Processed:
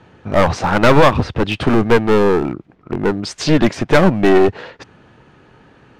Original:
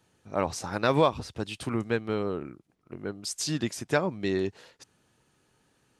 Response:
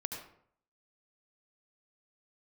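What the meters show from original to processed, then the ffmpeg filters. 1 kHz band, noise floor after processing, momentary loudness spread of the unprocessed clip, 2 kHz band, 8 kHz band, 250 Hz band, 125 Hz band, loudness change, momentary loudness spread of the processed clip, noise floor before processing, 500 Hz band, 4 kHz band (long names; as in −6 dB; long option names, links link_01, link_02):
+14.5 dB, −49 dBFS, 12 LU, +15.0 dB, +4.0 dB, +16.0 dB, +15.0 dB, +15.0 dB, 9 LU, −69 dBFS, +15.0 dB, +11.5 dB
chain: -af "lowpass=2300,acontrast=48,apsyclip=17dB,aeval=exprs='clip(val(0),-1,0.2)':channel_layout=same,volume=-1dB"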